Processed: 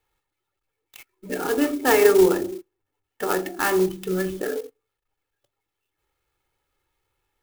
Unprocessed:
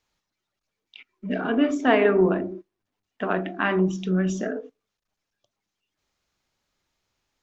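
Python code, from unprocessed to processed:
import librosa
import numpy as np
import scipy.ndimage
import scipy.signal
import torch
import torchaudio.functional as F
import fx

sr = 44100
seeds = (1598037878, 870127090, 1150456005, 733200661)

y = scipy.signal.sosfilt(scipy.signal.butter(4, 4200.0, 'lowpass', fs=sr, output='sos'), x)
y = y + 0.83 * np.pad(y, (int(2.3 * sr / 1000.0), 0))[:len(y)]
y = fx.clock_jitter(y, sr, seeds[0], jitter_ms=0.05)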